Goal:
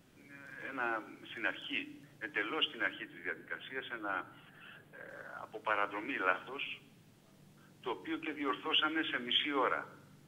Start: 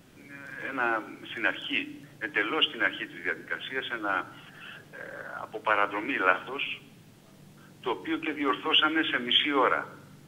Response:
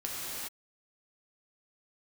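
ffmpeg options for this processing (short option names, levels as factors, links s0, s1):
-filter_complex "[0:a]asettb=1/sr,asplit=3[s0][s1][s2];[s0]atrim=end=2.934[s3];[s1]atrim=start=2.93:end=5.09,asetpts=PTS-STARTPTS,afade=t=in:d=0.004:c=qsin,afade=t=out:st=2.156:d=0.004:c=qsin,equalizer=f=5500:t=o:w=0.9:g=-10[s4];[s2]atrim=start=5.086[s5];[s3][s4]acrossfade=d=0.004:c1=hsin:c2=qsin[s6];[s6][s5]acrossfade=d=0.004:c1=qsin:c2=hsin,volume=0.376"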